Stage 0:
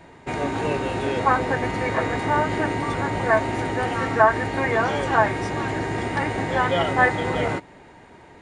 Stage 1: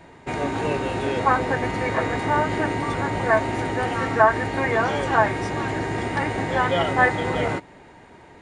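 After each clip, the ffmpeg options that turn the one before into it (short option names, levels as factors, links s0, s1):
-af anull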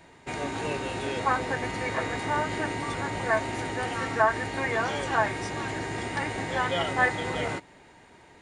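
-af "highshelf=f=2400:g=9,volume=0.422"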